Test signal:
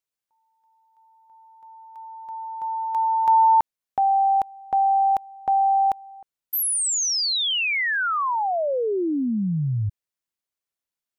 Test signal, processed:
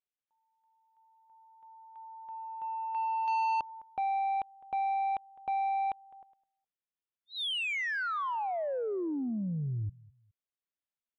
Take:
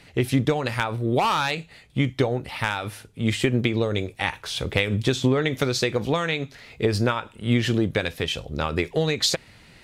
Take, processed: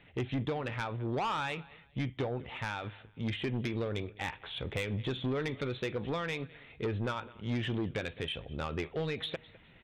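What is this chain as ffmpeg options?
ffmpeg -i in.wav -af "aresample=8000,aresample=44100,aecho=1:1:208|416:0.0668|0.0187,asoftclip=type=tanh:threshold=-18.5dB,volume=-8.5dB" out.wav

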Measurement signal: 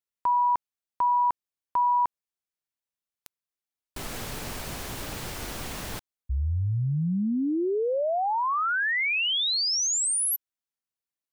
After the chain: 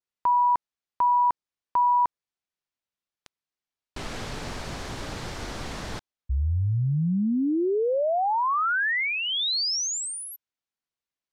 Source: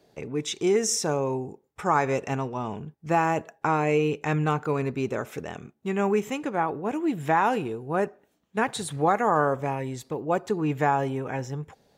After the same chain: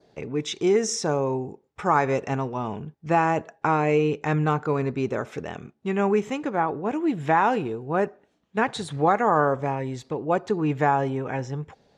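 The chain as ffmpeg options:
ffmpeg -i in.wav -af "lowpass=5700,adynamicequalizer=threshold=0.00398:dfrequency=2700:dqfactor=2.3:tfrequency=2700:tqfactor=2.3:attack=5:release=100:ratio=0.375:range=2.5:mode=cutabove:tftype=bell,volume=2dB" out.wav

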